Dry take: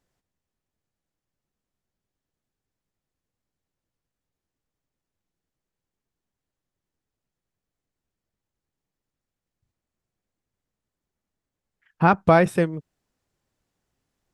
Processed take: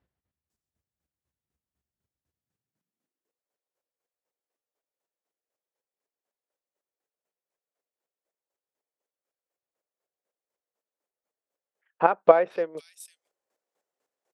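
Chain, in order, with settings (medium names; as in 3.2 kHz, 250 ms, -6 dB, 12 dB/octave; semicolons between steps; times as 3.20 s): bands offset in time lows, highs 500 ms, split 3.9 kHz; square tremolo 4 Hz, depth 65%, duty 25%; high-pass sweep 66 Hz -> 510 Hz, 2.26–3.42 s; trim -1 dB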